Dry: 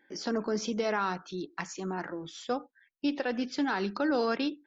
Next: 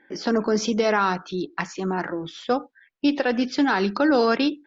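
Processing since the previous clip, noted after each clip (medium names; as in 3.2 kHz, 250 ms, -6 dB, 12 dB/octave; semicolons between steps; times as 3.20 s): level-controlled noise filter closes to 2.8 kHz, open at -24 dBFS; trim +9 dB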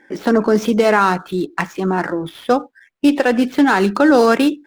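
median filter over 9 samples; trim +7.5 dB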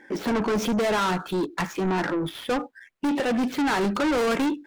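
saturation -21 dBFS, distortion -5 dB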